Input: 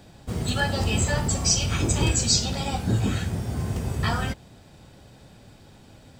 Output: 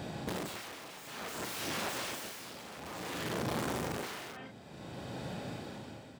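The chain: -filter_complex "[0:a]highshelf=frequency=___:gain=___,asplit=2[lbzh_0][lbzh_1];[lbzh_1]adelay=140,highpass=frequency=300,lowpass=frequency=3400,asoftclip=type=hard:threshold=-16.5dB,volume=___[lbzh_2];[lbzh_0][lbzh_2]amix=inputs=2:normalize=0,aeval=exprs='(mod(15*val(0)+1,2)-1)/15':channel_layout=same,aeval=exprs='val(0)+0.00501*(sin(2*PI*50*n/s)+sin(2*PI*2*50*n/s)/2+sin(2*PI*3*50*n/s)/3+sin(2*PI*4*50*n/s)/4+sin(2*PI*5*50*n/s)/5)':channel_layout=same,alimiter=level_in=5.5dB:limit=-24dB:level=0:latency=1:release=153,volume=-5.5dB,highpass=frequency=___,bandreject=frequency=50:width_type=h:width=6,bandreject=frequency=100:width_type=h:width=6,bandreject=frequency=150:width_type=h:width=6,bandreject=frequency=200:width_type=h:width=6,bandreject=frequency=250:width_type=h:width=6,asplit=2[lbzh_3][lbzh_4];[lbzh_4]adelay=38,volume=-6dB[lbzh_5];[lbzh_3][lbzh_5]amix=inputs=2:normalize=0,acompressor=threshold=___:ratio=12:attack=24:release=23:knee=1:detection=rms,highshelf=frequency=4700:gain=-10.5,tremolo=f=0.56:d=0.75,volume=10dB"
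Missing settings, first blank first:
11000, 4.5, -8dB, 130, -44dB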